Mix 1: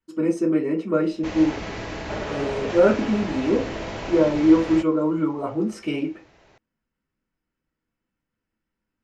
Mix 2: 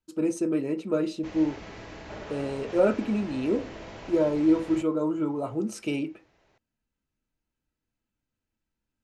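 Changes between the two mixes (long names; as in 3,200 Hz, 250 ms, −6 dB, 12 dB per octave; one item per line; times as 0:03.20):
speech: send −10.0 dB
background −10.5 dB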